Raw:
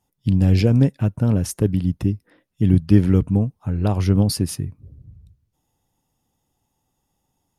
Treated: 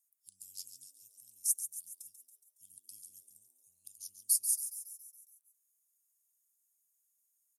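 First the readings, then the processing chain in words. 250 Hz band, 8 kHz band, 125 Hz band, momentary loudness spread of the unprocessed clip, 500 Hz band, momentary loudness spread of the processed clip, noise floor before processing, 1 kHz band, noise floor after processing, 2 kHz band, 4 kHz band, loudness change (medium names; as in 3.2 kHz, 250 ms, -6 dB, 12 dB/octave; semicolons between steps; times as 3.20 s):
under -40 dB, +2.0 dB, under -40 dB, 9 LU, under -40 dB, 23 LU, -74 dBFS, under -40 dB, -79 dBFS, under -40 dB, -16.0 dB, -14.0 dB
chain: inverse Chebyshev high-pass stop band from 1.9 kHz, stop band 70 dB; on a send: frequency-shifting echo 139 ms, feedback 58%, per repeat +150 Hz, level -10 dB; on the sum: trim +3.5 dB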